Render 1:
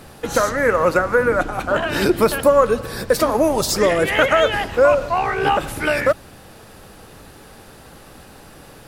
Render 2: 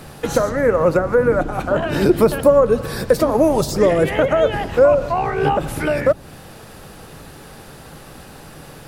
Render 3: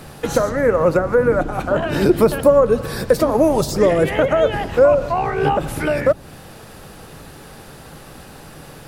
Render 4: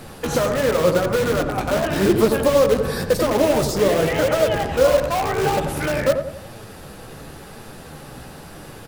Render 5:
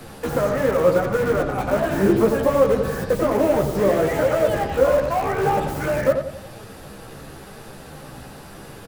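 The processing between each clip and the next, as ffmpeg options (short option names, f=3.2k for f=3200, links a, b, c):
-filter_complex "[0:a]equalizer=f=150:t=o:w=0.26:g=6.5,acrossover=split=800[a][b];[b]acompressor=threshold=-30dB:ratio=6[c];[a][c]amix=inputs=2:normalize=0,volume=3dB"
-af anull
-filter_complex "[0:a]flanger=delay=8.1:depth=8.4:regen=37:speed=0.92:shape=triangular,asplit=2[a][b];[b]aeval=exprs='(mod(9.44*val(0)+1,2)-1)/9.44':c=same,volume=-6dB[c];[a][c]amix=inputs=2:normalize=0,asplit=2[d][e];[e]adelay=89,lowpass=f=1.2k:p=1,volume=-6dB,asplit=2[f][g];[g]adelay=89,lowpass=f=1.2k:p=1,volume=0.47,asplit=2[h][i];[i]adelay=89,lowpass=f=1.2k:p=1,volume=0.47,asplit=2[j][k];[k]adelay=89,lowpass=f=1.2k:p=1,volume=0.47,asplit=2[l][m];[m]adelay=89,lowpass=f=1.2k:p=1,volume=0.47,asplit=2[n][o];[o]adelay=89,lowpass=f=1.2k:p=1,volume=0.47[p];[d][f][h][j][l][n][p]amix=inputs=7:normalize=0"
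-filter_complex "[0:a]acrossover=split=140|2200[a][b][c];[b]asplit=2[d][e];[e]adelay=15,volume=-5dB[f];[d][f]amix=inputs=2:normalize=0[g];[c]aeval=exprs='(mod(47.3*val(0)+1,2)-1)/47.3':c=same[h];[a][g][h]amix=inputs=3:normalize=0,volume=-1.5dB"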